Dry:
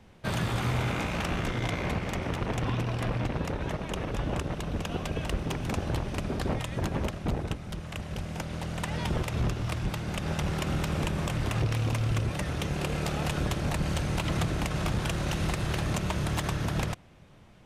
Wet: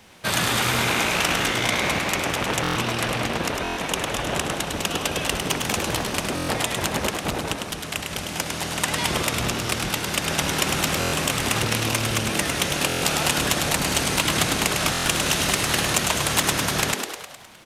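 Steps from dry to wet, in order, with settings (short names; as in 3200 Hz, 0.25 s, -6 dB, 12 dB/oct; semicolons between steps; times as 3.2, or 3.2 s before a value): tilt +3 dB/oct; frequency-shifting echo 0.103 s, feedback 59%, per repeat +110 Hz, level -5 dB; stuck buffer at 2.62/3.63/6.35/10.99/12.88/14.92, samples 1024, times 5; gain +8 dB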